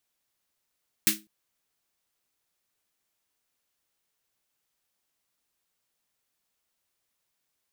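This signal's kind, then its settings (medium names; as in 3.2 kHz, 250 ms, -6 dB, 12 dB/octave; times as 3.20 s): snare drum length 0.20 s, tones 210 Hz, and 320 Hz, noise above 1.6 kHz, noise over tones 11.5 dB, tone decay 0.30 s, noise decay 0.20 s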